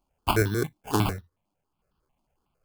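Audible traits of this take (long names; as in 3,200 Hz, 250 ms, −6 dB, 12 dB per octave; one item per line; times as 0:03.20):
aliases and images of a low sample rate 1,900 Hz, jitter 0%
notches that jump at a steady rate 11 Hz 470–2,200 Hz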